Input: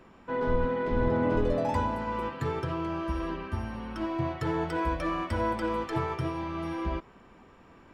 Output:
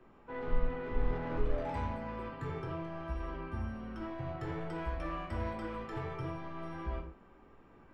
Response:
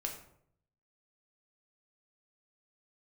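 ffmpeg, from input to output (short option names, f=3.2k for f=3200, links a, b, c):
-filter_complex "[0:a]highshelf=f=3k:g=-11,acrossover=split=140|1500[a][b][c];[b]asoftclip=type=tanh:threshold=-31.5dB[d];[a][d][c]amix=inputs=3:normalize=0[e];[1:a]atrim=start_sample=2205,atrim=end_sample=6615[f];[e][f]afir=irnorm=-1:irlink=0,volume=-5dB"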